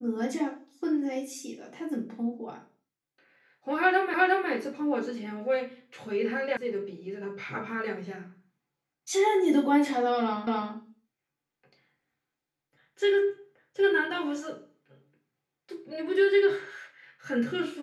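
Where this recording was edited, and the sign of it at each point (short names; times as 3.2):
4.14 repeat of the last 0.36 s
6.57 sound cut off
10.47 repeat of the last 0.26 s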